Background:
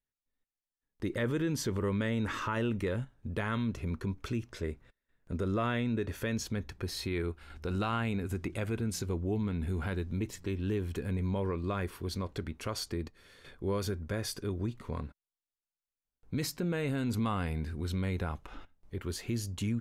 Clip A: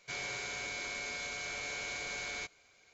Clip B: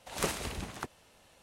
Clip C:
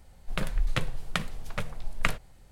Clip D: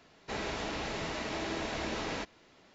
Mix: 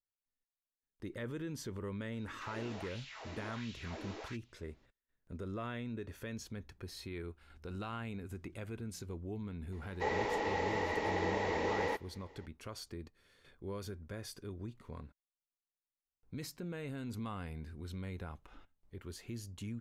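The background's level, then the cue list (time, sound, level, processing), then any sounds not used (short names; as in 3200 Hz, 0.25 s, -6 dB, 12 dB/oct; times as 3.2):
background -10 dB
2.12 add D -13.5 dB + LFO high-pass sine 1.4 Hz 240–3300 Hz
9.72 add D -8 dB + small resonant body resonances 480/850/1900 Hz, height 17 dB, ringing for 25 ms
not used: A, B, C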